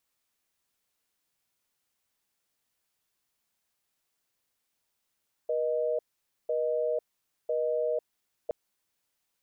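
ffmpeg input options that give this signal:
-f lavfi -i "aevalsrc='0.0376*(sin(2*PI*480*t)+sin(2*PI*620*t))*clip(min(mod(t,1),0.5-mod(t,1))/0.005,0,1)':d=3.02:s=44100"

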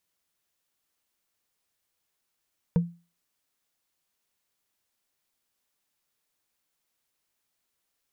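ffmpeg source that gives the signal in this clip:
-f lavfi -i "aevalsrc='0.168*pow(10,-3*t/0.32)*sin(2*PI*171*t)+0.0562*pow(10,-3*t/0.095)*sin(2*PI*471.4*t)+0.0188*pow(10,-3*t/0.042)*sin(2*PI*924.1*t)+0.00631*pow(10,-3*t/0.023)*sin(2*PI*1527.5*t)+0.00211*pow(10,-3*t/0.014)*sin(2*PI*2281.1*t)':d=0.45:s=44100"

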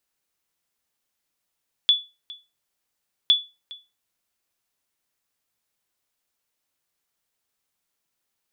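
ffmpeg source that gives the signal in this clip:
-f lavfi -i "aevalsrc='0.355*(sin(2*PI*3440*mod(t,1.41))*exp(-6.91*mod(t,1.41)/0.26)+0.0794*sin(2*PI*3440*max(mod(t,1.41)-0.41,0))*exp(-6.91*max(mod(t,1.41)-0.41,0)/0.26))':d=2.82:s=44100"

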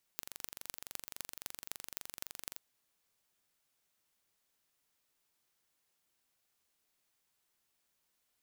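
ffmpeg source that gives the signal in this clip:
-f lavfi -i "aevalsrc='0.282*eq(mod(n,1869),0)*(0.5+0.5*eq(mod(n,11214),0))':d=2.38:s=44100"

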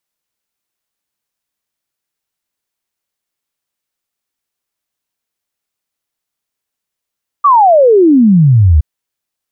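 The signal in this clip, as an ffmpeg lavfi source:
-f lavfi -i "aevalsrc='0.668*clip(min(t,1.37-t)/0.01,0,1)*sin(2*PI*1200*1.37/log(70/1200)*(exp(log(70/1200)*t/1.37)-1))':d=1.37:s=44100"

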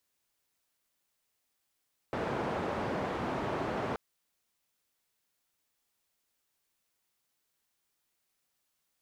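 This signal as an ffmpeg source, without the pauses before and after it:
-f lavfi -i "anoisesrc=c=white:d=1.83:r=44100:seed=1,highpass=f=88,lowpass=f=830,volume=-14.9dB"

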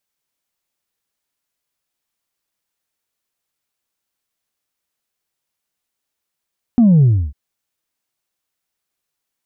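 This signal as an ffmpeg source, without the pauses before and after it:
-f lavfi -i "aevalsrc='0.422*clip((0.55-t)/0.3,0,1)*tanh(1.12*sin(2*PI*250*0.55/log(65/250)*(exp(log(65/250)*t/0.55)-1)))/tanh(1.12)':d=0.55:s=44100"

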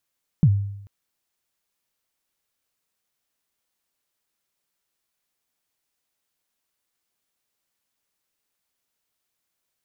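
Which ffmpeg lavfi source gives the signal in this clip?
-f lavfi -i "aevalsrc='0.335*pow(10,-3*t/0.8)*sin(2*PI*(180*0.059/log(100/180)*(exp(log(100/180)*min(t,0.059)/0.059)-1)+100*max(t-0.059,0)))':d=0.44:s=44100"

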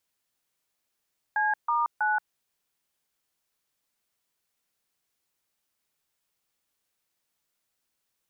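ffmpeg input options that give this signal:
-f lavfi -i "aevalsrc='0.0562*clip(min(mod(t,0.323),0.178-mod(t,0.323))/0.002,0,1)*(eq(floor(t/0.323),0)*(sin(2*PI*852*mod(t,0.323))+sin(2*PI*1633*mod(t,0.323)))+eq(floor(t/0.323),1)*(sin(2*PI*941*mod(t,0.323))+sin(2*PI*1209*mod(t,0.323)))+eq(floor(t/0.323),2)*(sin(2*PI*852*mod(t,0.323))+sin(2*PI*1477*mod(t,0.323))))':d=0.969:s=44100"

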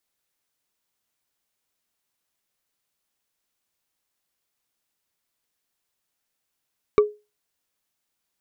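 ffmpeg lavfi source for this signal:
-f lavfi -i "aevalsrc='0.376*pow(10,-3*t/0.26)*sin(2*PI*419*t)+0.15*pow(10,-3*t/0.077)*sin(2*PI*1155.2*t)+0.0596*pow(10,-3*t/0.034)*sin(2*PI*2264.3*t)+0.0237*pow(10,-3*t/0.019)*sin(2*PI*3742.9*t)+0.00944*pow(10,-3*t/0.012)*sin(2*PI*5589.5*t)':d=0.45:s=44100"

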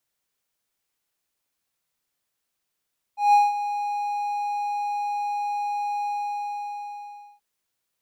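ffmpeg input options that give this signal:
-f lavfi -i "aevalsrc='0.316*(1-4*abs(mod(823*t+0.25,1)-0.5))':d=4.23:s=44100,afade=t=in:d=0.164,afade=t=out:st=0.164:d=0.188:silence=0.237,afade=t=out:st=2.89:d=1.34"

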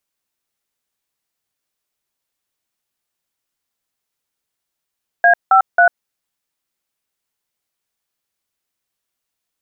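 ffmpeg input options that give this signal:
-f lavfi -i "aevalsrc='0.335*clip(min(mod(t,0.271),0.097-mod(t,0.271))/0.002,0,1)*(eq(floor(t/0.271),0)*(sin(2*PI*697*mod(t,0.271))+sin(2*PI*1633*mod(t,0.271)))+eq(floor(t/0.271),1)*(sin(2*PI*770*mod(t,0.271))+sin(2*PI*1336*mod(t,0.271)))+eq(floor(t/0.271),2)*(sin(2*PI*697*mod(t,0.271))+sin(2*PI*1477*mod(t,0.271))))':d=0.813:s=44100"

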